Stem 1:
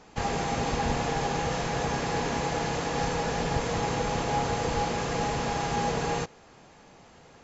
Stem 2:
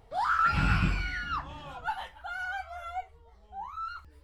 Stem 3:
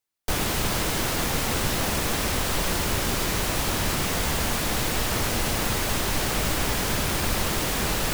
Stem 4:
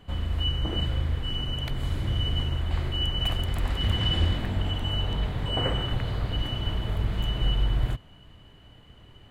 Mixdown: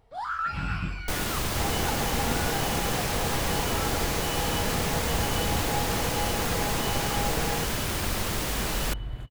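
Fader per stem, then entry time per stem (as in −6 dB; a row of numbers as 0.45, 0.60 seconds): −3.0, −4.5, −4.0, −10.0 decibels; 1.40, 0.00, 0.80, 1.30 seconds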